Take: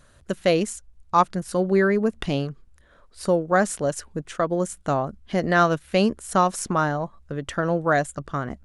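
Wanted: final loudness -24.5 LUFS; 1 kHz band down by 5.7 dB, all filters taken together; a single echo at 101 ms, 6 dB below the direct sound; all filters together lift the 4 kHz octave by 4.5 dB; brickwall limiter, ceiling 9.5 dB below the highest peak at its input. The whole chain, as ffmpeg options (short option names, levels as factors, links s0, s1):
-af "equalizer=f=1000:t=o:g=-8.5,equalizer=f=4000:t=o:g=6.5,alimiter=limit=0.15:level=0:latency=1,aecho=1:1:101:0.501,volume=1.41"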